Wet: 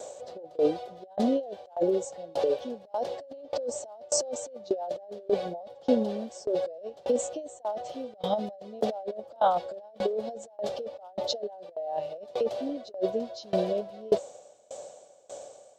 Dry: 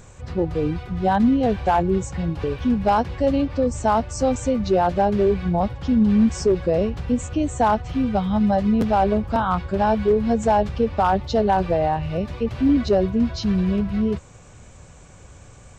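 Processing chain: resonant high-pass 580 Hz, resonance Q 4.9; band shelf 1600 Hz -12.5 dB; negative-ratio compressor -24 dBFS, ratio -1; dB-ramp tremolo decaying 1.7 Hz, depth 25 dB

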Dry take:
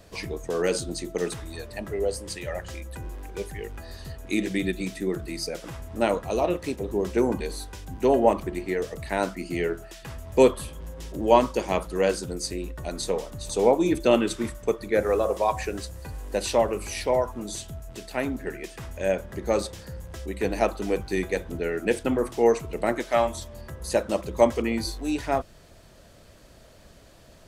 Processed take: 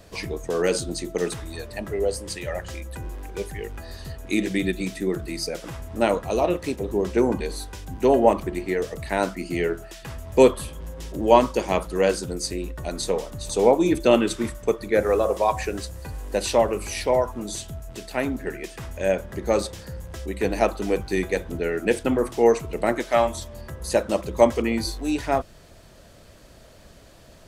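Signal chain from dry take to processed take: 7.01–7.56 high shelf 10000 Hz -6.5 dB; gain +2.5 dB

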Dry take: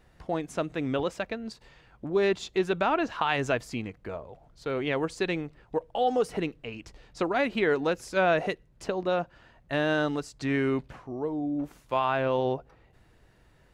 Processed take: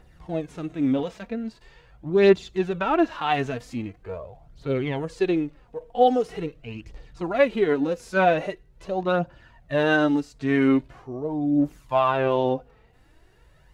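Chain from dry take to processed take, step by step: harmonic-percussive split percussive -17 dB; phaser 0.43 Hz, delay 4.7 ms, feedback 48%; gain +6 dB

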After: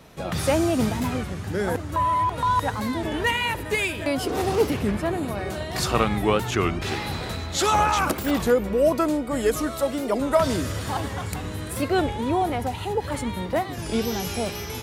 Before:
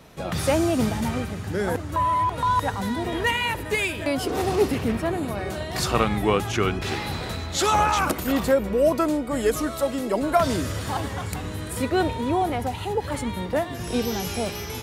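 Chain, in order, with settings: record warp 33 1/3 rpm, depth 160 cents

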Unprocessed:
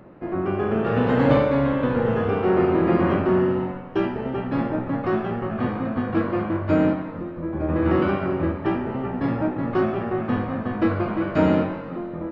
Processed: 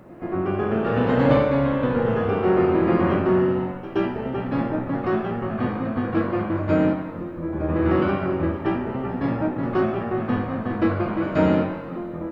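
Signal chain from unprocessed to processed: pre-echo 0.124 s -15 dB; requantised 12-bit, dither none

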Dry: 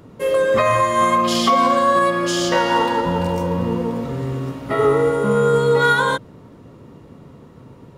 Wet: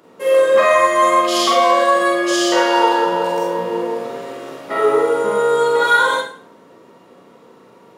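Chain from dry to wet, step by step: HPF 390 Hz 12 dB/oct; Schroeder reverb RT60 0.45 s, combs from 33 ms, DRR -2.5 dB; gain -1 dB

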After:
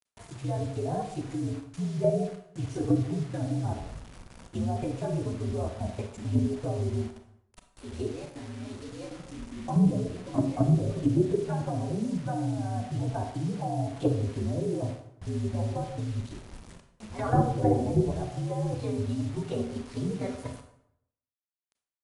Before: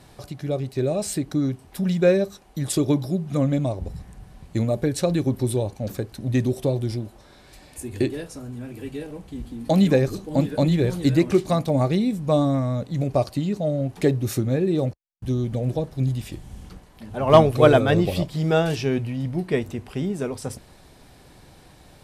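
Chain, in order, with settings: inharmonic rescaling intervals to 121%; treble ducked by the level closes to 440 Hz, closed at -17 dBFS; level quantiser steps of 10 dB; de-hum 66.88 Hz, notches 12; bit-crush 8-bit; brick-wall FIR low-pass 11000 Hz; reverb RT60 0.70 s, pre-delay 27 ms, DRR 6 dB

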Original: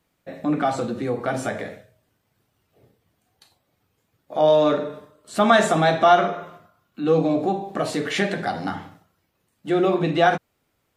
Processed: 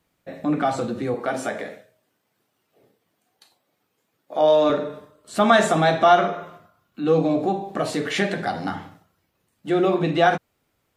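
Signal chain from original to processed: 1.14–4.7 HPF 220 Hz 12 dB/oct

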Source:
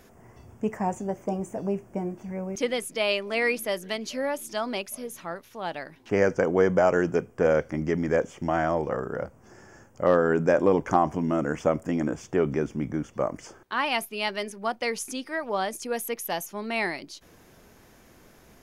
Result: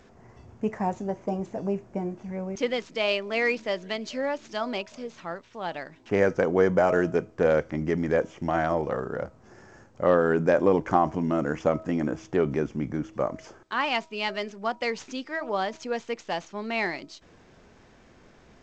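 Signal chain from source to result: median filter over 5 samples; de-hum 320.2 Hz, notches 4; G.722 64 kbps 16000 Hz

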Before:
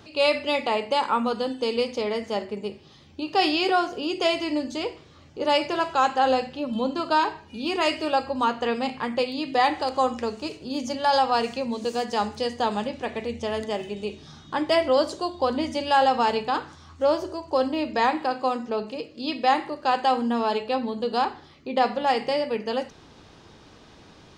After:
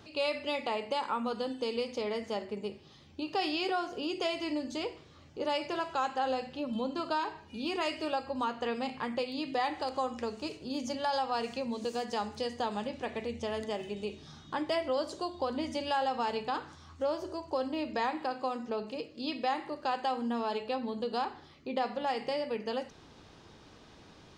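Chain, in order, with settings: compressor 2:1, threshold -27 dBFS, peak gain reduction 7 dB; gain -5 dB

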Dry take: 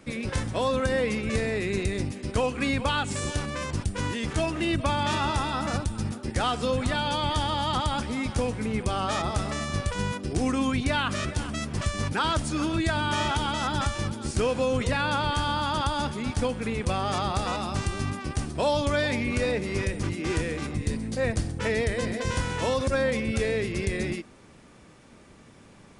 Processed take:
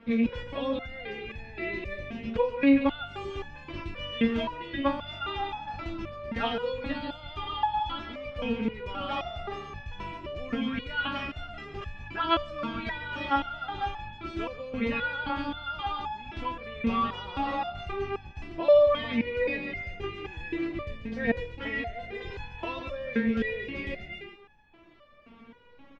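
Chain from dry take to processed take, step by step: rattling part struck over -26 dBFS, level -30 dBFS; in parallel at +2 dB: vocal rider 0.5 s; on the sum: Chebyshev low-pass 3100 Hz, order 3; echo 0.143 s -8.5 dB; stepped resonator 3.8 Hz 230–850 Hz; gain +5.5 dB

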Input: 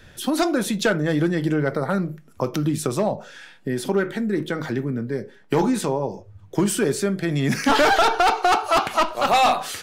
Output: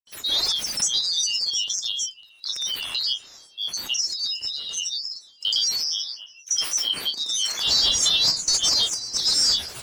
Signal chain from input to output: band-swap scrambler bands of 4000 Hz; on a send at -15 dB: LPF 2400 Hz + reverb RT60 0.80 s, pre-delay 77 ms; on the sum: grains 0.155 s, pitch spread up and down by 7 st

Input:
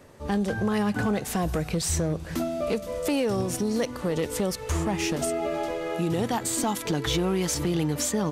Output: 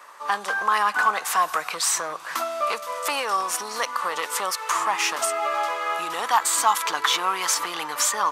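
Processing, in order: resonant high-pass 1100 Hz, resonance Q 4; gain +6 dB

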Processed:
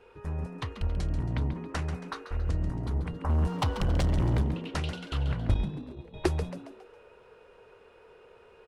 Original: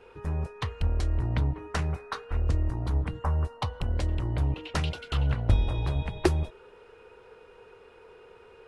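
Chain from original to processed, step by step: 3.29–4.42 sample leveller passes 3; 5.54–6.14 gate -23 dBFS, range -20 dB; frequency-shifting echo 0.137 s, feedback 45%, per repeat +100 Hz, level -11 dB; gain -3.5 dB

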